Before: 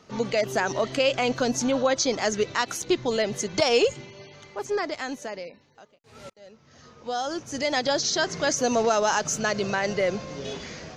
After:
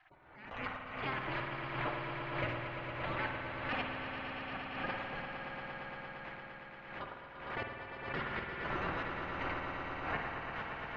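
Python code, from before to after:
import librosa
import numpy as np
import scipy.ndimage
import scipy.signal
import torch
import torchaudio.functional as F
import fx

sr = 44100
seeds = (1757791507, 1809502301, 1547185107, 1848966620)

y = fx.local_reverse(x, sr, ms=113.0)
y = fx.spec_gate(y, sr, threshold_db=-20, keep='weak')
y = scipy.signal.sosfilt(scipy.signal.butter(4, 2100.0, 'lowpass', fs=sr, output='sos'), y)
y = fx.rider(y, sr, range_db=3, speed_s=0.5)
y = fx.step_gate(y, sr, bpm=118, pattern='....xx..xxx...x', floor_db=-24.0, edge_ms=4.5)
y = fx.echo_swell(y, sr, ms=115, loudest=5, wet_db=-9)
y = fx.rev_spring(y, sr, rt60_s=1.2, pass_ms=(50,), chirp_ms=35, drr_db=3.0)
y = fx.pre_swell(y, sr, db_per_s=58.0)
y = y * 10.0 ** (3.5 / 20.0)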